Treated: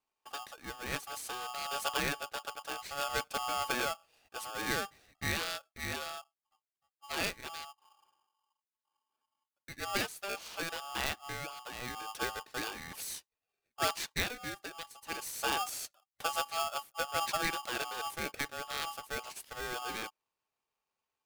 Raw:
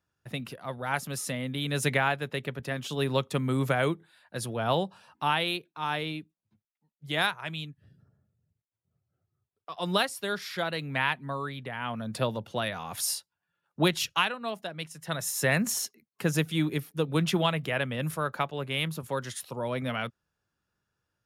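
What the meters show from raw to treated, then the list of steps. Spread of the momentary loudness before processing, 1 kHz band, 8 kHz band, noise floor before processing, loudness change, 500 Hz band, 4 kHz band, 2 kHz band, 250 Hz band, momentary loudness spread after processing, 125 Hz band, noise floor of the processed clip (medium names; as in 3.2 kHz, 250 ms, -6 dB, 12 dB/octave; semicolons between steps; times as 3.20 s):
11 LU, -4.5 dB, -4.5 dB, under -85 dBFS, -6.5 dB, -10.0 dB, -5.0 dB, -5.5 dB, -14.0 dB, 11 LU, -17.5 dB, under -85 dBFS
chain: de-esser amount 50%; polarity switched at an audio rate 990 Hz; trim -7.5 dB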